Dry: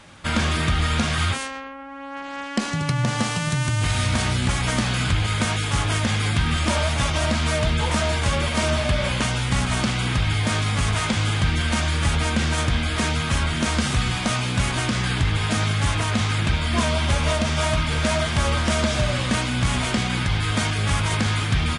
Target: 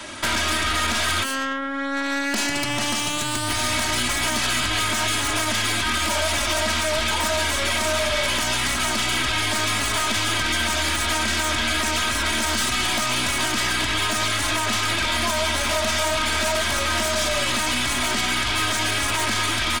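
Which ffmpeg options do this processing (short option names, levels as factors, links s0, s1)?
-filter_complex "[0:a]highpass=57,equalizer=f=92:t=o:w=1.6:g=-7.5,alimiter=limit=0.15:level=0:latency=1:release=52,highshelf=f=4300:g=4.5,acrossover=split=160|730[s0][s1][s2];[s0]acompressor=threshold=0.00631:ratio=4[s3];[s1]acompressor=threshold=0.00708:ratio=4[s4];[s2]acompressor=threshold=0.0282:ratio=4[s5];[s3][s4][s5]amix=inputs=3:normalize=0,aeval=exprs='0.158*(cos(1*acos(clip(val(0)/0.158,-1,1)))-cos(1*PI/2))+0.0316*(cos(4*acos(clip(val(0)/0.158,-1,1)))-cos(4*PI/2))':c=same,atempo=1.1,aecho=1:1:3.1:0.75,aeval=exprs='0.15*sin(PI/2*2*val(0)/0.15)':c=same"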